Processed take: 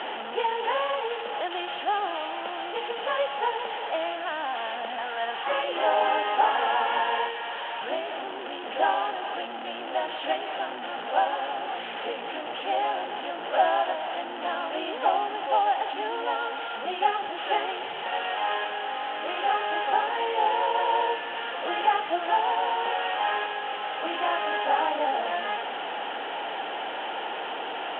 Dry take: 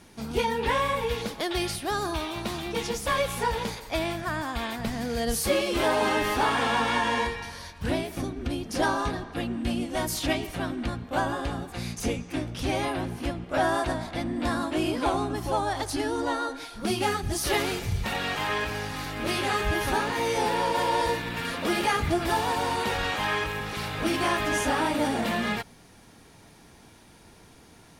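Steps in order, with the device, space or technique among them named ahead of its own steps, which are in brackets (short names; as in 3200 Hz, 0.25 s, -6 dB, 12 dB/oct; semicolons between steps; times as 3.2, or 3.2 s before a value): 4.98–5.64 graphic EQ 125/250/500/1000/2000/4000/8000 Hz +6/-6/-10/+12/+4/-3/-8 dB; digital answering machine (BPF 330–3000 Hz; delta modulation 16 kbps, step -27 dBFS; speaker cabinet 470–3400 Hz, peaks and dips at 520 Hz +3 dB, 800 Hz +9 dB, 1100 Hz -5 dB, 2200 Hz -8 dB, 3100 Hz +10 dB)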